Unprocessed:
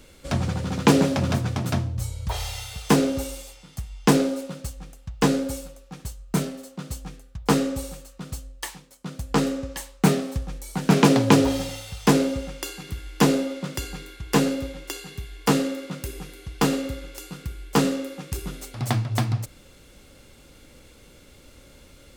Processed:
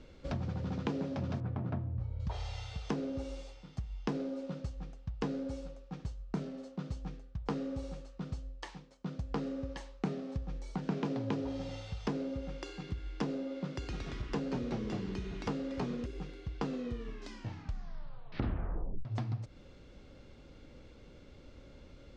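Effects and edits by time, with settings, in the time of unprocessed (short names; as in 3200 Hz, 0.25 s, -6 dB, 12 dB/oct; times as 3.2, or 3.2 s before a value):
1.4–2.2 LPF 1700 Hz
13.77–16.06 echoes that change speed 0.114 s, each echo -2 st, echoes 3
16.63 tape stop 2.42 s
whole clip: compressor 4:1, threshold -31 dBFS; LPF 5800 Hz 24 dB/oct; tilt shelf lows +4.5 dB, about 1200 Hz; gain -7 dB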